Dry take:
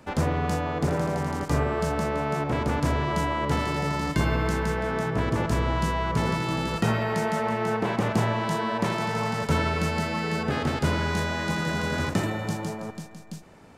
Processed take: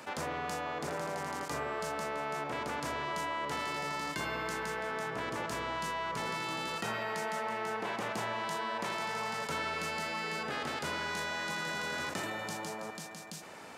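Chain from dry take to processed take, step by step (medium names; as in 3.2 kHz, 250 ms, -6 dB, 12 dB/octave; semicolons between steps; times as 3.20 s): high-pass 880 Hz 6 dB/octave; level flattener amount 50%; trim -6 dB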